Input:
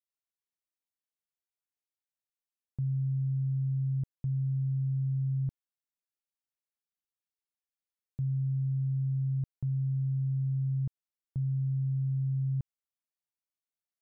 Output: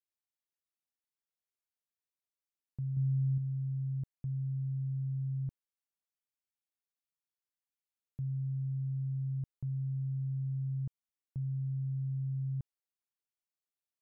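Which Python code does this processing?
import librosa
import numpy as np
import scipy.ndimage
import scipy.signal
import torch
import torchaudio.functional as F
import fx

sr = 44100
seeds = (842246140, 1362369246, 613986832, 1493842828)

y = fx.comb(x, sr, ms=7.5, depth=0.77, at=(2.96, 3.38))
y = y * librosa.db_to_amplitude(-5.0)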